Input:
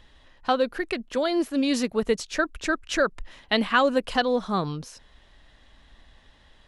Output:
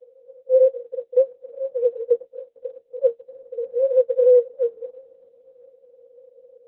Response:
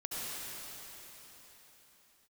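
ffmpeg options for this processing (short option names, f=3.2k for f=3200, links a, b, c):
-filter_complex "[0:a]asettb=1/sr,asplit=3[a][b][c];[a]atrim=end=0.924[d];[b]atrim=start=0.92:end=2.85,asetpts=PTS-STARTPTS,afade=t=in:d=0.004:c=qsin,afade=t=out:st=1.926:d=0.004:c=qsin,aemphasis=mode=reproduction:type=75kf[e];[c]atrim=start=2.846[f];[d][e]acrossfade=d=0.004:c1=hsin:c2=qsin[g];[g][f]acrossfade=d=0.004:c1=qsin:c2=hsin,acompressor=threshold=-23dB:ratio=10,asoftclip=type=tanh:threshold=-32.5dB,asuperpass=centerf=500:order=12:qfactor=6.8,alimiter=level_in=35.5dB:limit=-1dB:release=50:level=0:latency=1,volume=-7.5dB" -ar 48000 -c:a libopus -b:a 8k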